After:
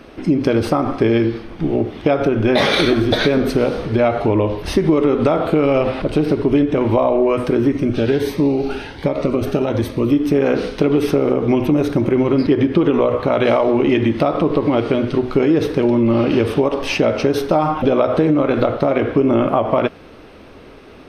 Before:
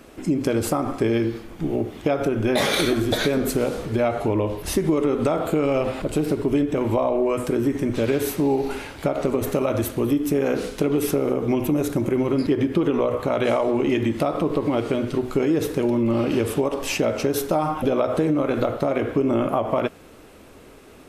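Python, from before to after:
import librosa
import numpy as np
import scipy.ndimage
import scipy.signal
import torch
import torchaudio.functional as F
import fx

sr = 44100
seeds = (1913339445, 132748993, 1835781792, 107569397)

y = scipy.signal.savgol_filter(x, 15, 4, mode='constant')
y = fx.notch_cascade(y, sr, direction='rising', hz=1.3, at=(7.72, 10.13))
y = F.gain(torch.from_numpy(y), 6.0).numpy()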